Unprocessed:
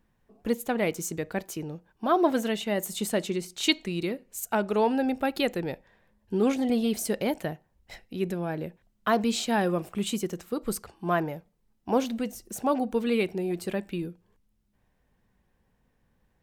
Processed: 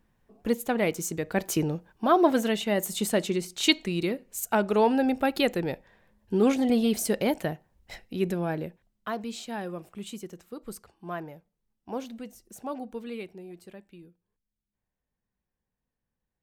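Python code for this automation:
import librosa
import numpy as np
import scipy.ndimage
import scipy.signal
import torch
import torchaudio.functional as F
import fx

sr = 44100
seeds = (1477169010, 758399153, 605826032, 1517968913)

y = fx.gain(x, sr, db=fx.line((1.25, 1.0), (1.57, 9.5), (2.15, 2.0), (8.52, 2.0), (9.17, -9.5), (12.85, -9.5), (13.88, -17.0)))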